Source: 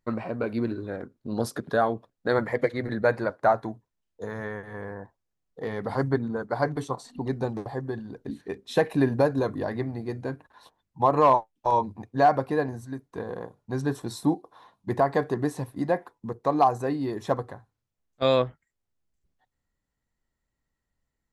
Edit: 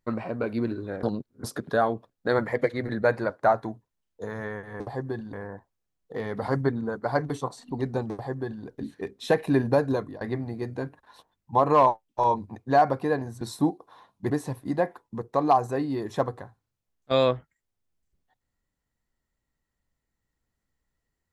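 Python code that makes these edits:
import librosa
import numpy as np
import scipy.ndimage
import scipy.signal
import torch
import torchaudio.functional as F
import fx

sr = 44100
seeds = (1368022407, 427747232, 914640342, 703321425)

y = fx.edit(x, sr, fx.reverse_span(start_s=1.03, length_s=0.41),
    fx.duplicate(start_s=7.59, length_s=0.53, to_s=4.8),
    fx.fade_out_to(start_s=9.4, length_s=0.28, floor_db=-19.5),
    fx.cut(start_s=12.88, length_s=1.17),
    fx.cut(start_s=14.94, length_s=0.47), tone=tone)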